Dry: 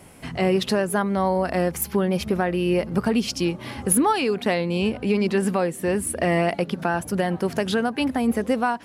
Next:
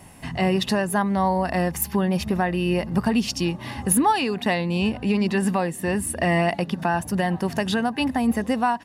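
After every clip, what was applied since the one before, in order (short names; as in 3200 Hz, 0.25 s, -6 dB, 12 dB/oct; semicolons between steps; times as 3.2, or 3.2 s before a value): comb 1.1 ms, depth 44%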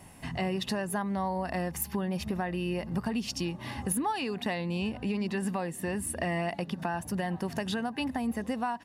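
compressor 2.5:1, threshold -25 dBFS, peak gain reduction 7 dB; gain -5 dB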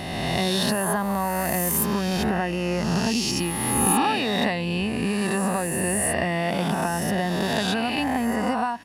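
spectral swells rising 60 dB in 1.91 s; gain +4.5 dB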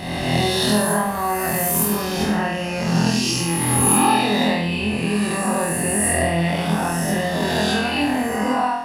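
flutter echo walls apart 4.1 m, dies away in 0.68 s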